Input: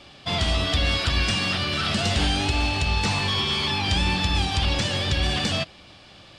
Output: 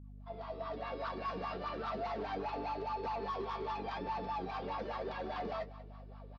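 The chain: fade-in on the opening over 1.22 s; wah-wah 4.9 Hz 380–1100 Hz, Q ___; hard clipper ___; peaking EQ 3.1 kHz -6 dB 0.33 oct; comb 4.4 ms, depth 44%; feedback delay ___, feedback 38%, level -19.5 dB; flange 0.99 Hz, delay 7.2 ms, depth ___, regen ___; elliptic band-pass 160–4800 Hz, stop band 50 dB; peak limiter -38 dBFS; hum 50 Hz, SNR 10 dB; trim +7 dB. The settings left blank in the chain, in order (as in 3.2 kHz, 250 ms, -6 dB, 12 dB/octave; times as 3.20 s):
5.7, -37 dBFS, 194 ms, 5.1 ms, +50%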